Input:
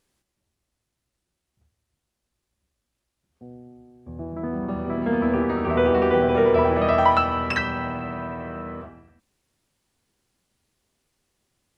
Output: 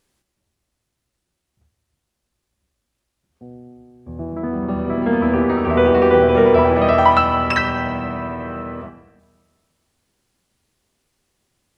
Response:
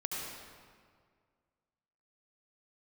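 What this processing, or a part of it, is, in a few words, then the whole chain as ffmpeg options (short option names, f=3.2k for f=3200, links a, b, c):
keyed gated reverb: -filter_complex "[0:a]asplit=3[a][b][c];[1:a]atrim=start_sample=2205[d];[b][d]afir=irnorm=-1:irlink=0[e];[c]apad=whole_len=519217[f];[e][f]sidechaingate=range=-10dB:threshold=-39dB:ratio=16:detection=peak,volume=-10.5dB[g];[a][g]amix=inputs=2:normalize=0,asettb=1/sr,asplit=3[h][i][j];[h]atrim=end=4.394[k];[i]atrim=start=4.39:end=5.58,asetpts=PTS-STARTPTS,afade=t=in:d=0.004:c=qsin,afade=t=out:st=1.186:d=0.004:c=qsin,lowpass=f=5k:w=0.5412,lowpass=f=5k:w=1.3066[l];[j]atrim=start=5.576[m];[k][l]acrossfade=d=0.004:c1=hsin:c2=qsin[n];[n][m]acrossfade=d=0.004:c1=qsin:c2=hsin,volume=3dB"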